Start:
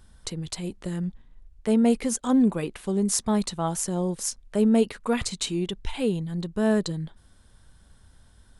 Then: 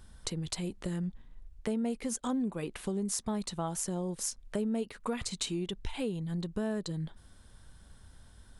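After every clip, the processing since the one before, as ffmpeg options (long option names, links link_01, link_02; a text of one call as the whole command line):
ffmpeg -i in.wav -af "acompressor=threshold=-32dB:ratio=4" out.wav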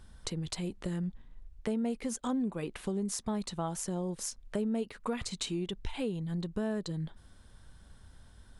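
ffmpeg -i in.wav -af "highshelf=frequency=7700:gain=-6" out.wav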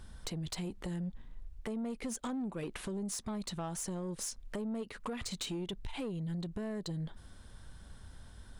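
ffmpeg -i in.wav -af "acompressor=threshold=-36dB:ratio=4,asoftclip=type=tanh:threshold=-35.5dB,volume=3.5dB" out.wav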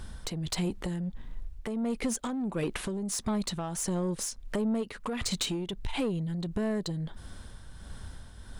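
ffmpeg -i in.wav -af "tremolo=f=1.5:d=0.46,volume=9dB" out.wav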